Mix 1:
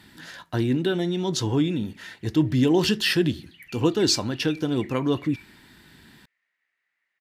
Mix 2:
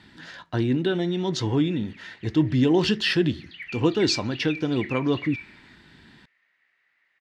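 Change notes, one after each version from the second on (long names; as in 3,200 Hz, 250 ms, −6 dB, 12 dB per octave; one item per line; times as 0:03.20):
background +9.5 dB
master: add low-pass filter 5,000 Hz 12 dB per octave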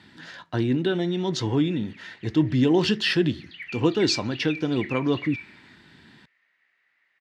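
master: add high-pass filter 82 Hz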